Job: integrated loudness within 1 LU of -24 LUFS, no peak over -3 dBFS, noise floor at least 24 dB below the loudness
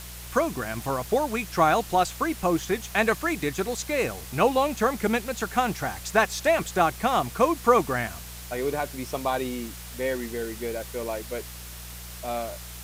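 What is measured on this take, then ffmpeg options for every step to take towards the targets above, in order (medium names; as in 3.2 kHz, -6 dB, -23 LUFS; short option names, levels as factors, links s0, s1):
hum 60 Hz; highest harmonic 180 Hz; hum level -41 dBFS; noise floor -40 dBFS; noise floor target -50 dBFS; loudness -26.0 LUFS; peak level -7.5 dBFS; loudness target -24.0 LUFS
-> -af "bandreject=f=60:t=h:w=4,bandreject=f=120:t=h:w=4,bandreject=f=180:t=h:w=4"
-af "afftdn=nr=10:nf=-40"
-af "volume=1.26"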